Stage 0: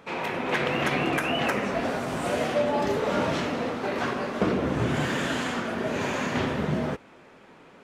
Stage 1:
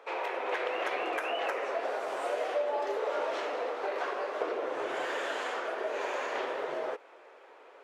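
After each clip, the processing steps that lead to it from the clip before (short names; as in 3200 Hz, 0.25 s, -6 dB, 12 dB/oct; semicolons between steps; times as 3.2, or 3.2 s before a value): inverse Chebyshev high-pass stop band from 220 Hz, stop band 40 dB; tilt -2.5 dB/oct; compressor 2:1, threshold -31 dBFS, peak gain reduction 6.5 dB; gain -1 dB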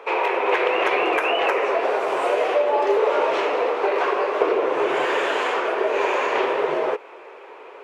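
fifteen-band EQ 160 Hz +10 dB, 400 Hz +9 dB, 1000 Hz +7 dB, 2500 Hz +8 dB; gain +6.5 dB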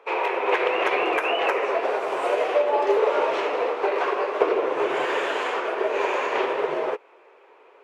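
upward expander 1.5:1, over -38 dBFS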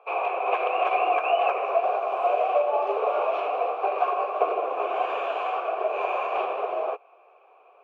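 vowel filter a; gain +7.5 dB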